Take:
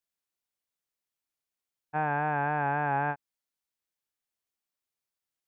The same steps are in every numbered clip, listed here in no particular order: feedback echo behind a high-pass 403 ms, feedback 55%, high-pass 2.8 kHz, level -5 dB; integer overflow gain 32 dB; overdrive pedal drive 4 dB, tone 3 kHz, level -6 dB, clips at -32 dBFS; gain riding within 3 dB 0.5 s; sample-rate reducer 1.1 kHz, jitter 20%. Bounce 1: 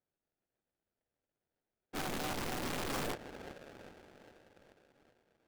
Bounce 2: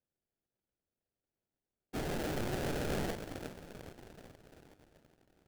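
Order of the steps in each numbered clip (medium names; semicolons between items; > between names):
feedback echo behind a high-pass > sample-rate reducer > overdrive pedal > integer overflow > gain riding; gain riding > overdrive pedal > integer overflow > feedback echo behind a high-pass > sample-rate reducer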